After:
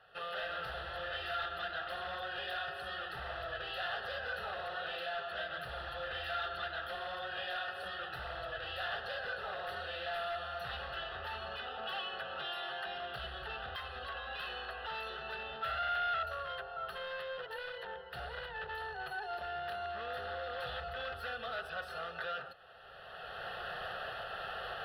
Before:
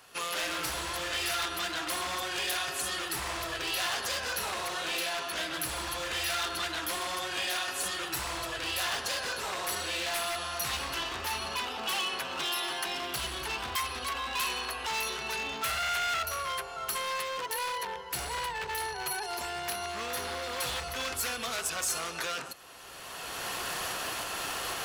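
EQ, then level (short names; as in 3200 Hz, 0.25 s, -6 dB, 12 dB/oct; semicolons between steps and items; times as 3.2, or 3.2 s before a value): air absorption 480 m; low shelf 420 Hz -6 dB; fixed phaser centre 1500 Hz, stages 8; +2.0 dB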